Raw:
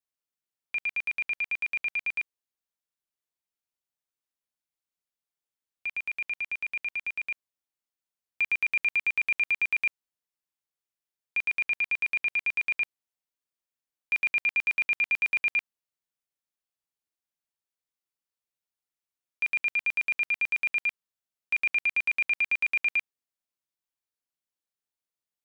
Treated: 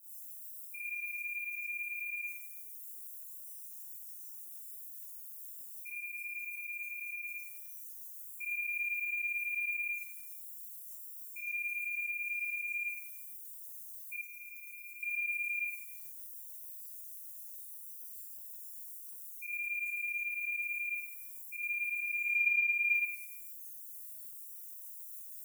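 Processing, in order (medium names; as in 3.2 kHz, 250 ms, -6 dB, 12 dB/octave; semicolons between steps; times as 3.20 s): zero-crossing glitches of -33 dBFS; 20.19–20.82 s: dynamic bell 350 Hz, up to +3 dB, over -48 dBFS, Q 0.74; tremolo saw up 6.6 Hz, depth 40%; spectral gate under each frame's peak -10 dB strong; 22.22–22.89 s: transient shaper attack +10 dB, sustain -8 dB; feedback comb 740 Hz, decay 0.4 s, mix 80%; Schroeder reverb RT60 0.63 s, combs from 31 ms, DRR -9 dB; short-mantissa float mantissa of 6-bit; 14.21–15.03 s: peaking EQ 2.4 kHz -14.5 dB 0.69 oct; trim -2 dB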